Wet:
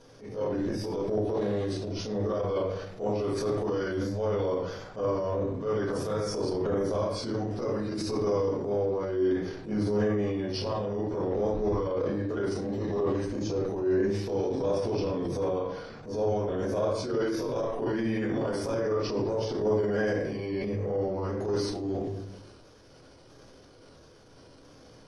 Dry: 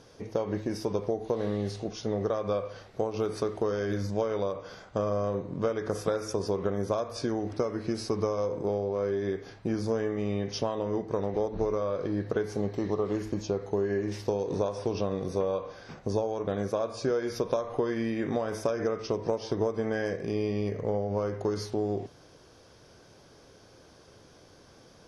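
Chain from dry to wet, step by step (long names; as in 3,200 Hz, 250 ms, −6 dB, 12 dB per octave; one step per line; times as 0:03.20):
pitch shifter swept by a sawtooth −1.5 semitones, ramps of 665 ms
rectangular room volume 79 cubic metres, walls mixed, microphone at 1.8 metres
transient designer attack −9 dB, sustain +6 dB
level −6.5 dB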